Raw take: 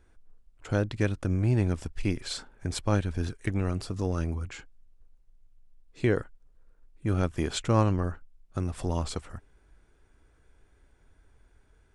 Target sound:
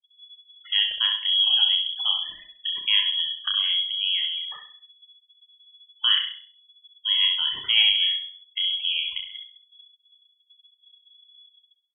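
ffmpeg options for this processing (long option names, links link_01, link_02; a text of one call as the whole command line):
ffmpeg -i in.wav -filter_complex "[0:a]asplit=2[link_01][link_02];[link_02]aecho=0:1:30|63|99.3|139.2|183.2:0.631|0.398|0.251|0.158|0.1[link_03];[link_01][link_03]amix=inputs=2:normalize=0,afftfilt=real='re*gte(hypot(re,im),0.02)':imag='im*gte(hypot(re,im),0.02)':win_size=1024:overlap=0.75,asplit=2[link_04][link_05];[link_05]aecho=0:1:66|132|198|264:0.355|0.124|0.0435|0.0152[link_06];[link_04][link_06]amix=inputs=2:normalize=0,acrossover=split=2600[link_07][link_08];[link_08]acompressor=threshold=-42dB:ratio=4:attack=1:release=60[link_09];[link_07][link_09]amix=inputs=2:normalize=0,lowpass=frequency=2900:width_type=q:width=0.5098,lowpass=frequency=2900:width_type=q:width=0.6013,lowpass=frequency=2900:width_type=q:width=0.9,lowpass=frequency=2900:width_type=q:width=2.563,afreqshift=-3400,volume=1.5dB" out.wav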